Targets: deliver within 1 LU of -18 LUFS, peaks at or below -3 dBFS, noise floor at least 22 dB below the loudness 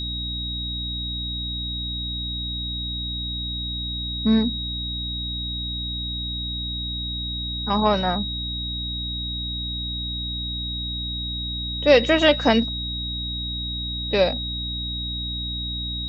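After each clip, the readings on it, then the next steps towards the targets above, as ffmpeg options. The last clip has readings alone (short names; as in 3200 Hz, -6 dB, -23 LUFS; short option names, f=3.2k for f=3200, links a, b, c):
hum 60 Hz; harmonics up to 300 Hz; hum level -29 dBFS; steady tone 3800 Hz; tone level -28 dBFS; loudness -24.5 LUFS; peak -3.5 dBFS; loudness target -18.0 LUFS
-> -af "bandreject=f=60:t=h:w=6,bandreject=f=120:t=h:w=6,bandreject=f=180:t=h:w=6,bandreject=f=240:t=h:w=6,bandreject=f=300:t=h:w=6"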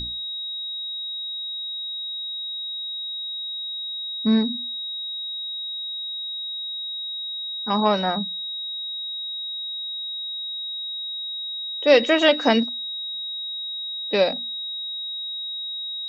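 hum none; steady tone 3800 Hz; tone level -28 dBFS
-> -af "bandreject=f=3.8k:w=30"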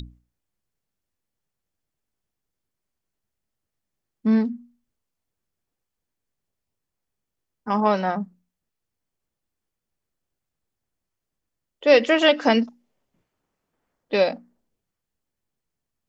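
steady tone none; loudness -21.0 LUFS; peak -3.0 dBFS; loudness target -18.0 LUFS
-> -af "volume=3dB,alimiter=limit=-3dB:level=0:latency=1"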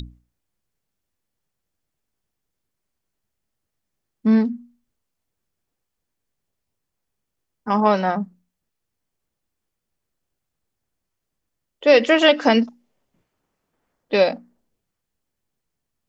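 loudness -18.5 LUFS; peak -3.0 dBFS; noise floor -80 dBFS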